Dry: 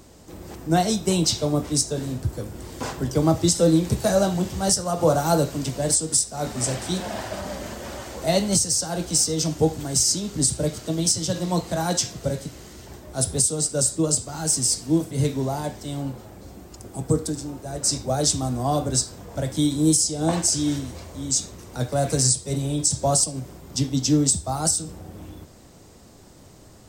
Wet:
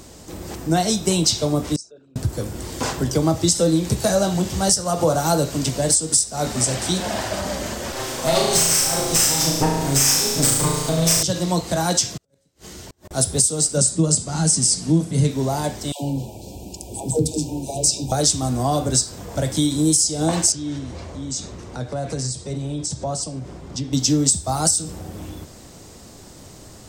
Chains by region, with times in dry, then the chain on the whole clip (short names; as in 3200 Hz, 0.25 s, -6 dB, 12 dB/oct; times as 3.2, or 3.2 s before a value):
1.76–2.16 formant sharpening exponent 2 + double band-pass 1900 Hz, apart 0.83 oct
7.92–11.23 minimum comb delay 7.6 ms + flutter echo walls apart 6.2 m, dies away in 0.94 s
12.17–13.11 resonator 91 Hz, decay 0.47 s + negative-ratio compressor -35 dBFS, ratio -0.5 + flipped gate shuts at -33 dBFS, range -35 dB
13.77–15.31 steep low-pass 12000 Hz 72 dB/oct + bell 180 Hz +12 dB 0.61 oct
15.92–18.12 brick-wall FIR band-stop 1000–2300 Hz + dispersion lows, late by 0.111 s, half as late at 450 Hz
20.52–23.93 LPF 8000 Hz + high shelf 3300 Hz -9.5 dB + compressor 2:1, threshold -35 dBFS
whole clip: bell 6500 Hz +4 dB 2.4 oct; compressor 2:1, threshold -24 dBFS; gain +5.5 dB